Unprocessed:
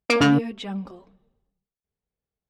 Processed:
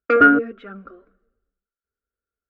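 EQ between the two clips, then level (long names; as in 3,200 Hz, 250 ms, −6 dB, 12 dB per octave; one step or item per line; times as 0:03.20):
dynamic equaliser 480 Hz, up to +7 dB, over −33 dBFS, Q 0.98
low-pass with resonance 1,400 Hz, resonance Q 15
phaser with its sweep stopped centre 370 Hz, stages 4
−1.0 dB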